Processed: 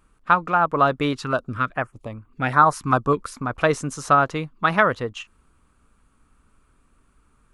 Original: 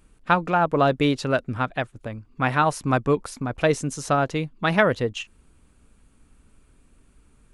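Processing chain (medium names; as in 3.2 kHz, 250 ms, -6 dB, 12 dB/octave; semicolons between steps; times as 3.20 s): peaking EQ 1.2 kHz +11 dB 0.8 oct; gain riding 2 s; 1.13–3.34 s: step-sequenced notch 5 Hz 590–5200 Hz; trim -3 dB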